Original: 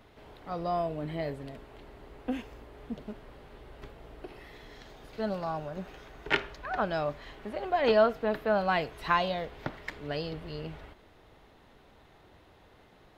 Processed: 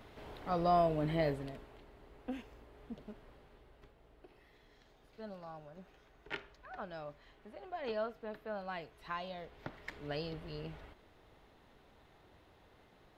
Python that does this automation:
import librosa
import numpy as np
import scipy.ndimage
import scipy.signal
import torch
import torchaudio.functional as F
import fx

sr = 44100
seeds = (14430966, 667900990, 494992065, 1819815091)

y = fx.gain(x, sr, db=fx.line((1.28, 1.5), (1.86, -8.5), (3.29, -8.5), (3.93, -15.0), (9.15, -15.0), (10.02, -5.5)))